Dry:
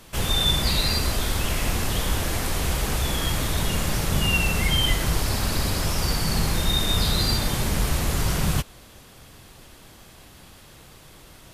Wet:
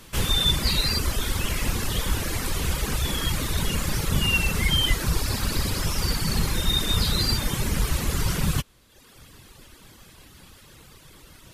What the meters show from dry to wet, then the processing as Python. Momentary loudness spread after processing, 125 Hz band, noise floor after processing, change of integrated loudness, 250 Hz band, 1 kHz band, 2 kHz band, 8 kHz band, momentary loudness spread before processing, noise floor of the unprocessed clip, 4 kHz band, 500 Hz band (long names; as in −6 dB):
6 LU, −1.0 dB, −52 dBFS, −1.0 dB, −1.5 dB, −3.0 dB, −1.0 dB, −1.0 dB, 4 LU, −48 dBFS, −0.5 dB, −3.0 dB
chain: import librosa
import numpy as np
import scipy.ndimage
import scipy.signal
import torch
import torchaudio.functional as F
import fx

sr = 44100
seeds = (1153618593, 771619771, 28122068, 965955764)

y = fx.dereverb_blind(x, sr, rt60_s=0.99)
y = fx.peak_eq(y, sr, hz=700.0, db=-6.5, octaves=0.54)
y = y * librosa.db_to_amplitude(1.5)